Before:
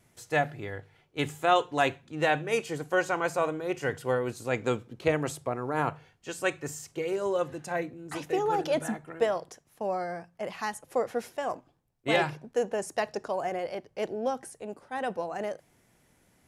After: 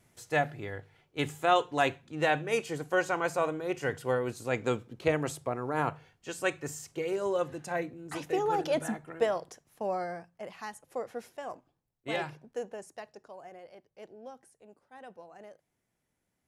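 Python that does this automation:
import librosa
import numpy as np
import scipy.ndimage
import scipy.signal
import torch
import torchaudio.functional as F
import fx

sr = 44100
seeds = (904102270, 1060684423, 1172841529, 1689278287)

y = fx.gain(x, sr, db=fx.line((10.04, -1.5), (10.52, -8.0), (12.55, -8.0), (13.13, -16.5)))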